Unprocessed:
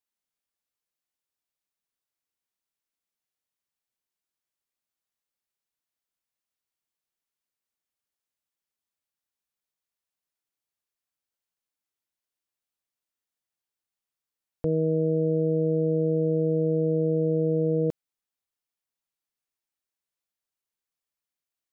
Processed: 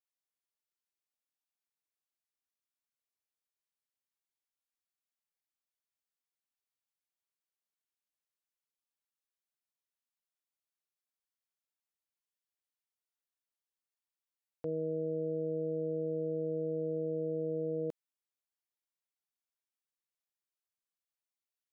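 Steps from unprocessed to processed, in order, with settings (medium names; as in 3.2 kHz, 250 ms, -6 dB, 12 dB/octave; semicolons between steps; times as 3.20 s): high-pass 380 Hz 6 dB/octave; 14.68–16.98 s: level flattener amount 70%; trim -7.5 dB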